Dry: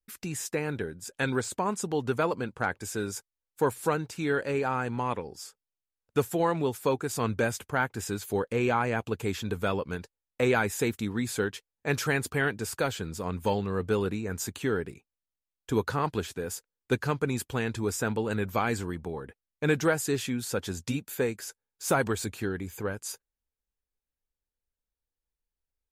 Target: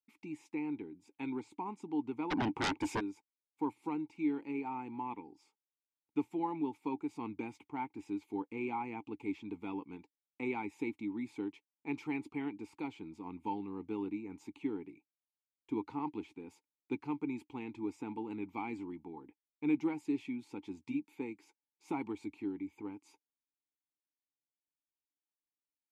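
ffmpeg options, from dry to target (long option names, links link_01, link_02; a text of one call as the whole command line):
ffmpeg -i in.wav -filter_complex "[0:a]asplit=3[link_01][link_02][link_03];[link_01]bandpass=frequency=300:width_type=q:width=8,volume=0dB[link_04];[link_02]bandpass=frequency=870:width_type=q:width=8,volume=-6dB[link_05];[link_03]bandpass=frequency=2240:width_type=q:width=8,volume=-9dB[link_06];[link_04][link_05][link_06]amix=inputs=3:normalize=0,asplit=3[link_07][link_08][link_09];[link_07]afade=type=out:start_time=2.3:duration=0.02[link_10];[link_08]aeval=exprs='0.0299*sin(PI/2*5.62*val(0)/0.0299)':channel_layout=same,afade=type=in:start_time=2.3:duration=0.02,afade=type=out:start_time=2.99:duration=0.02[link_11];[link_09]afade=type=in:start_time=2.99:duration=0.02[link_12];[link_10][link_11][link_12]amix=inputs=3:normalize=0,volume=1.5dB" out.wav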